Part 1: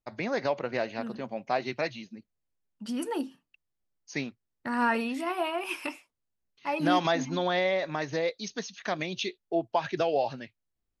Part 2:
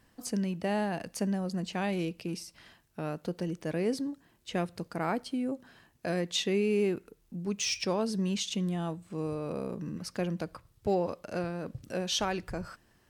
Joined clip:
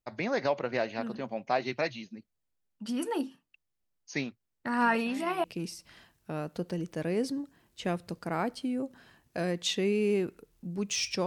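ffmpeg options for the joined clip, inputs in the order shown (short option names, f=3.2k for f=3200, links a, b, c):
-filter_complex "[1:a]asplit=2[a][b];[0:a]apad=whole_dur=11.26,atrim=end=11.26,atrim=end=5.442[c];[b]atrim=start=2.128:end=7.95[d];[a]atrim=start=1.49:end=2.13,asetpts=PTS-STARTPTS,volume=-17dB,afade=t=in:d=0.004:c=hsin,afade=t=out:st=0.636:d=0.004:c=hsin,adelay=4800[e];[c][d]acrossfade=d=0.004:c1=hsin:c2=hsin[f];[f][e]amix=inputs=2:normalize=0"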